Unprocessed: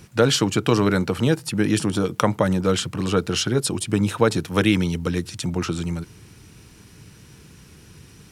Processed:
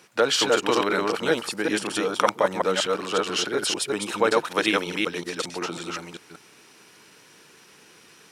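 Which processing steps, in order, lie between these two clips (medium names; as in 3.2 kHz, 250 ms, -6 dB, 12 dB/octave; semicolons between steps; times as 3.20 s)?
chunks repeated in reverse 187 ms, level -0.5 dB; high-pass 490 Hz 12 dB/octave; treble shelf 6 kHz -7 dB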